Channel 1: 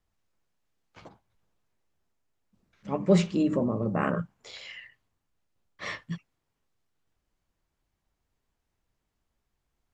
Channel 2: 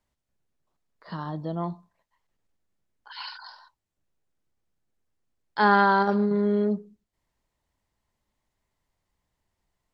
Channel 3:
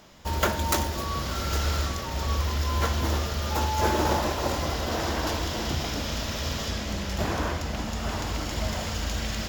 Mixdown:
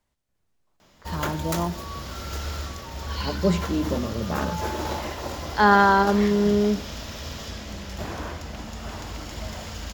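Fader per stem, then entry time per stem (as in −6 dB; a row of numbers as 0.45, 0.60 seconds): −1.0, +3.0, −5.0 decibels; 0.35, 0.00, 0.80 seconds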